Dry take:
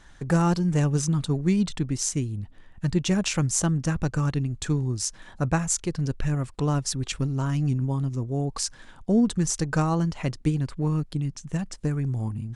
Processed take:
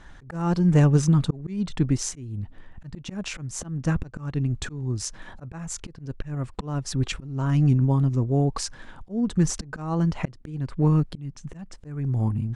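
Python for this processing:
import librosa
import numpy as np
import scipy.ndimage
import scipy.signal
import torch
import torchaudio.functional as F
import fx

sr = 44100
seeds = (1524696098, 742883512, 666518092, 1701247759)

y = fx.high_shelf(x, sr, hz=3900.0, db=-11.5)
y = fx.auto_swell(y, sr, attack_ms=384.0)
y = y * librosa.db_to_amplitude(5.5)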